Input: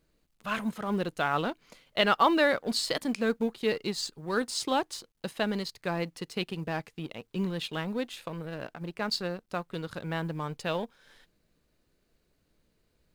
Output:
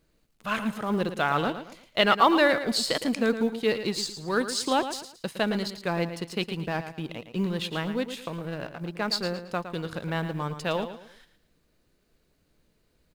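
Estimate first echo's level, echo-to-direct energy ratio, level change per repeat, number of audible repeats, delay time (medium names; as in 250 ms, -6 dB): -10.5 dB, -10.0 dB, -10.0 dB, 3, 112 ms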